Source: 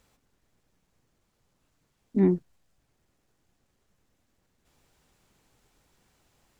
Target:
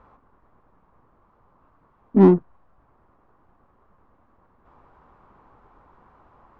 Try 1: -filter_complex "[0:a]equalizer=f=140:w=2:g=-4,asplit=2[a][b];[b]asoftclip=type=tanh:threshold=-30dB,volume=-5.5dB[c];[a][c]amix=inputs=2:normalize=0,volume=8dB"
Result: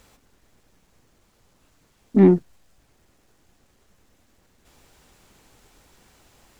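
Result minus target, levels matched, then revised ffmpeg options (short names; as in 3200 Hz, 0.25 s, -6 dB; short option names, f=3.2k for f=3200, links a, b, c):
1000 Hz band -5.0 dB
-filter_complex "[0:a]lowpass=f=1.1k:t=q:w=3.7,equalizer=f=140:w=2:g=-4,asplit=2[a][b];[b]asoftclip=type=tanh:threshold=-30dB,volume=-5.5dB[c];[a][c]amix=inputs=2:normalize=0,volume=8dB"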